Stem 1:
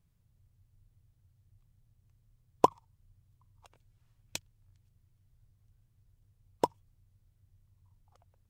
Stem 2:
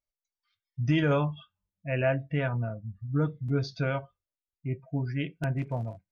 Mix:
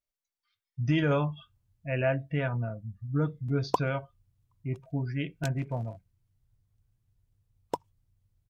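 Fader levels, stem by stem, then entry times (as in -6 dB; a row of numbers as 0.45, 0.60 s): -4.0, -1.0 dB; 1.10, 0.00 s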